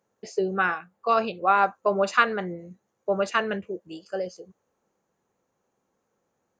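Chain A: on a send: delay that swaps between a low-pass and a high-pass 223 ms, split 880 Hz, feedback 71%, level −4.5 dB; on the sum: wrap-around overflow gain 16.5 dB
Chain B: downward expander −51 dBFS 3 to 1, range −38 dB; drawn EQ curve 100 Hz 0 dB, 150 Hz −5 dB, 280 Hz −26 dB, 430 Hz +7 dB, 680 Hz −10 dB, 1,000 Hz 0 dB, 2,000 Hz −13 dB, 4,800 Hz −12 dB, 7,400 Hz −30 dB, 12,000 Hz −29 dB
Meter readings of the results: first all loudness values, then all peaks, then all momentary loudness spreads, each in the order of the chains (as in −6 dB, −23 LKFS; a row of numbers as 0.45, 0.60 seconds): −25.5, −28.5 LKFS; −16.5, −11.5 dBFS; 14, 13 LU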